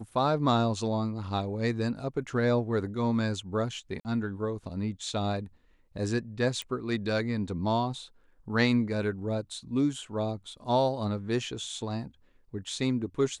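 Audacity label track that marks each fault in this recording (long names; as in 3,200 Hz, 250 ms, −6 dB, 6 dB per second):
4.000000	4.050000	drop-out 49 ms
6.620000	6.620000	click −21 dBFS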